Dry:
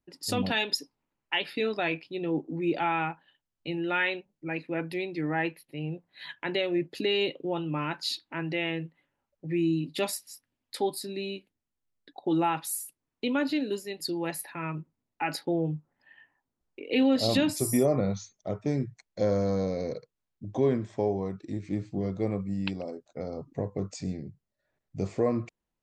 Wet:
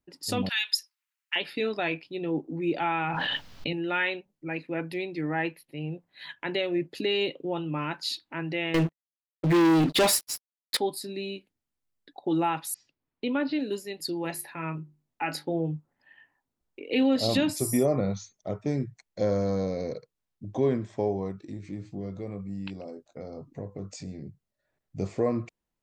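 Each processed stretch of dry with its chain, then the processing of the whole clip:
0.49–1.36 HPF 1400 Hz 24 dB/oct + high shelf 6100 Hz +6 dB
3.04–3.73 resonant high shelf 6300 Hz -11.5 dB, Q 1.5 + notch 360 Hz, Q 6.8 + fast leveller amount 100%
8.74–10.77 tone controls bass -4 dB, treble -5 dB + sample leveller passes 5 + expander -37 dBFS
12.74–13.59 steep low-pass 5400 Hz 48 dB/oct + high shelf 3500 Hz -6.5 dB
14.22–15.6 notches 50/100/150/200/250/300/350/400 Hz + doubler 25 ms -13.5 dB
21.32–24.22 compressor 2:1, threshold -38 dBFS + doubler 20 ms -12 dB
whole clip: dry

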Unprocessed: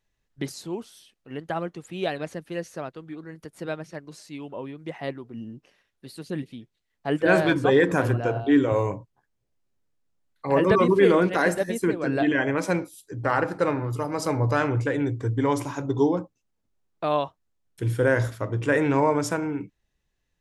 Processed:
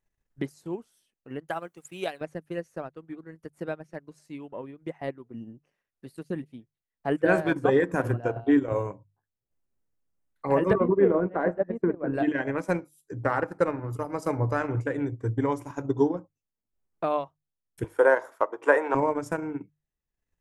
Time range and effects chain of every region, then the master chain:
1.48–2.21 tilt +3 dB/oct + notch 1800 Hz, Q 17 + requantised 12-bit, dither triangular
10.73–12.14 LPF 1200 Hz + bell 630 Hz +3 dB 0.23 oct
17.84–18.95 HPF 360 Hz 24 dB/oct + bell 910 Hz +13 dB 1.2 oct
whole clip: bell 3900 Hz -9 dB 1.2 oct; notches 50/100/150 Hz; transient shaper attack +5 dB, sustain -9 dB; gain -4 dB

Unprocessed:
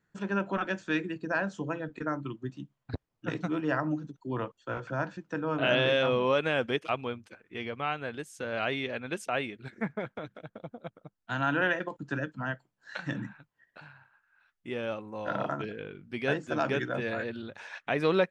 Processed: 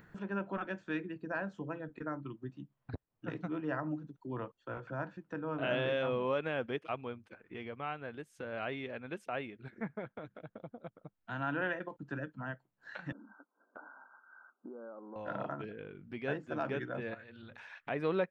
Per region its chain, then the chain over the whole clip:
13.12–15.16 compressor 4:1, threshold -41 dBFS + brick-wall FIR band-pass 210–1600 Hz
17.14–17.87 bell 390 Hz -11.5 dB 2.5 oct + notches 60/120/180/240/300/360/420/480 Hz + compressor 1.5:1, threshold -52 dBFS
whole clip: high shelf 4300 Hz -6 dB; upward compressor, threshold -34 dBFS; bell 7000 Hz -9 dB 1.7 oct; gain -6.5 dB

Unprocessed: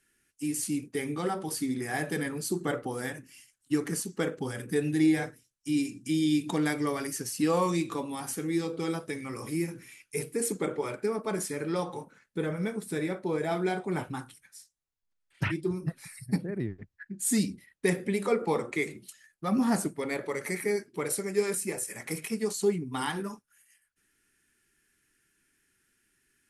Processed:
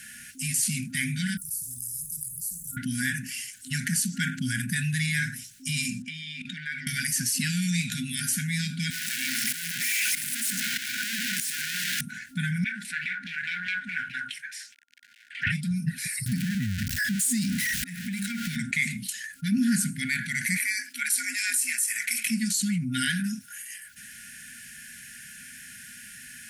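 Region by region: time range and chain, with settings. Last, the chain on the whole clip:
1.37–2.77 inverse Chebyshev band-stop 330–3000 Hz, stop band 80 dB + spectral compressor 2:1
6.02–6.87 LPF 10000 Hz + three-band isolator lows -17 dB, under 270 Hz, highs -20 dB, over 3400 Hz + level quantiser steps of 22 dB
8.9–12.01 infinite clipping + HPF 350 Hz + tremolo saw up 1.6 Hz, depth 80%
12.64–15.47 G.711 law mismatch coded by mu + LFO band-pass saw down 4.8 Hz 900–2700 Hz + Doppler distortion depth 0.25 ms
16.26–18.56 zero-crossing step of -32.5 dBFS + compressor, threshold -30 dBFS + auto swell 0.796 s
20.57–22.26 HPF 550 Hz + frequency shift +69 Hz
whole clip: HPF 160 Hz 6 dB/oct; FFT band-reject 260–1400 Hz; fast leveller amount 50%; gain +4 dB

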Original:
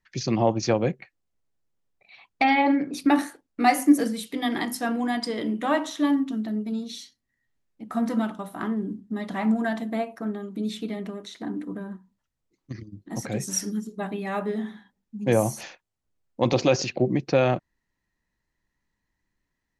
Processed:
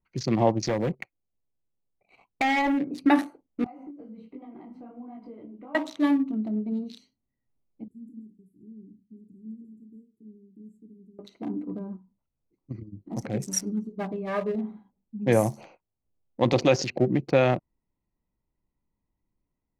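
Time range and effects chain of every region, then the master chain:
0.67–2.78 sample leveller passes 2 + compressor 2:1, threshold -29 dBFS
3.64–5.75 LPF 2700 Hz + compressor 12:1, threshold -35 dBFS + detuned doubles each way 48 cents
7.88–11.19 brick-wall FIR band-stop 450–6600 Hz + passive tone stack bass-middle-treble 5-5-5
14.12–14.55 high shelf 3600 Hz -9.5 dB + comb 1.8 ms, depth 63%
whole clip: Wiener smoothing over 25 samples; bell 2000 Hz +5 dB 0.32 oct

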